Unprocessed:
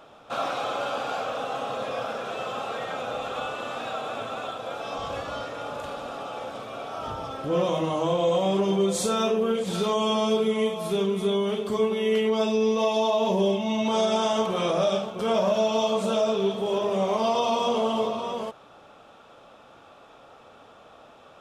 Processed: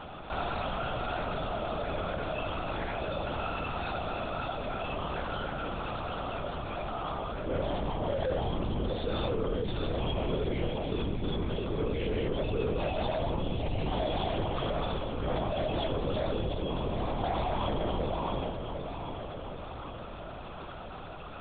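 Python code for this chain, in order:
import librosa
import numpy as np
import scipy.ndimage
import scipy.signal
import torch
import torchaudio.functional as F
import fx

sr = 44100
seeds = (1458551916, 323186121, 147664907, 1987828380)

y = x + 0.65 * np.pad(x, (int(4.2 * sr / 1000.0), 0))[:len(x)]
y = 10.0 ** (-19.0 / 20.0) * np.tanh(y / 10.0 ** (-19.0 / 20.0))
y = fx.echo_feedback(y, sr, ms=756, feedback_pct=44, wet_db=-13.0)
y = fx.lpc_vocoder(y, sr, seeds[0], excitation='whisper', order=8)
y = fx.env_flatten(y, sr, amount_pct=50)
y = y * 10.0 ** (-8.5 / 20.0)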